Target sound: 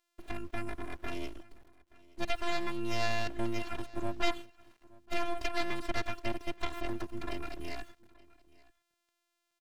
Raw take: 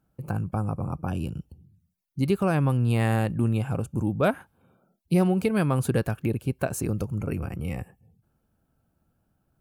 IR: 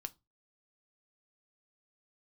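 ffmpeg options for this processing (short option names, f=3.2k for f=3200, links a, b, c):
-filter_complex "[0:a]afftfilt=real='hypot(re,im)*cos(PI*b)':imag='0':win_size=512:overlap=0.75,acrossover=split=4800[a][b];[b]acompressor=threshold=-59dB:ratio=4:attack=1:release=60[c];[a][c]amix=inputs=2:normalize=0,highshelf=f=2.4k:g=7,acrossover=split=320|1200[d][e][f];[e]asoftclip=type=tanh:threshold=-32.5dB[g];[f]acontrast=87[h];[d][g][h]amix=inputs=3:normalize=0,aeval=exprs='abs(val(0))':c=same,acrusher=bits=9:mix=0:aa=0.000001,aemphasis=mode=reproduction:type=50kf,aecho=1:1:875:0.0708"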